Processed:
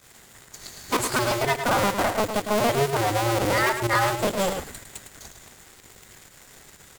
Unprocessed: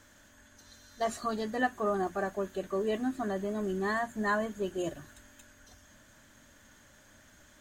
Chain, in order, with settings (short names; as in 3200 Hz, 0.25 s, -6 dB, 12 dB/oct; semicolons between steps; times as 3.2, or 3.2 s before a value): cycle switcher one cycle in 2, inverted; high shelf 4900 Hz +6.5 dB; notch 1600 Hz, Q 21; in parallel at -0.5 dB: compressor, threshold -42 dBFS, peak gain reduction 18 dB; on the sum: sample leveller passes 3; pump 114 bpm, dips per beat 1, -13 dB, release 68 ms; on a send: echo 0.116 s -8 dB; on the sum: speed mistake 44.1 kHz file played as 48 kHz; gain -3 dB